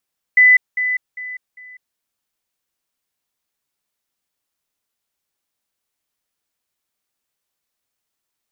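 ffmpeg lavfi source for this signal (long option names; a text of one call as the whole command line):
ffmpeg -f lavfi -i "aevalsrc='pow(10,(-6.5-10*floor(t/0.4))/20)*sin(2*PI*2000*t)*clip(min(mod(t,0.4),0.2-mod(t,0.4))/0.005,0,1)':duration=1.6:sample_rate=44100" out.wav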